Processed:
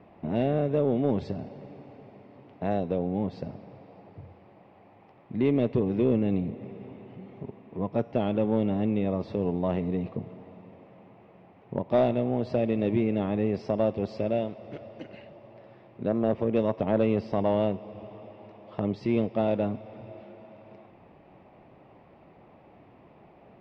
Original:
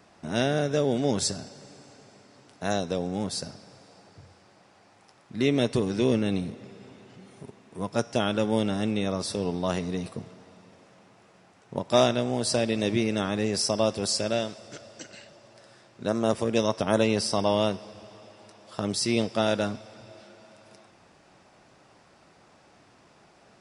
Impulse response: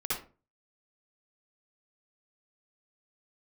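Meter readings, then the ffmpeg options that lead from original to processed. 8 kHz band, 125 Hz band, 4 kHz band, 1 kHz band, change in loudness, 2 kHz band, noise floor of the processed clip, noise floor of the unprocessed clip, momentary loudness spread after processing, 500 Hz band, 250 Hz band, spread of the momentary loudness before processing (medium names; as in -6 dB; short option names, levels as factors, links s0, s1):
under -35 dB, +1.0 dB, -17.5 dB, -3.0 dB, -1.0 dB, -9.0 dB, -55 dBFS, -58 dBFS, 19 LU, -0.5 dB, +0.5 dB, 16 LU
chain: -filter_complex "[0:a]lowpass=f=2300:w=0.5412,lowpass=f=2300:w=1.3066,equalizer=f=1500:t=o:w=0.75:g=-14.5,asplit=2[s0][s1];[s1]acompressor=threshold=0.0141:ratio=6,volume=0.891[s2];[s0][s2]amix=inputs=2:normalize=0,asoftclip=type=tanh:threshold=0.251"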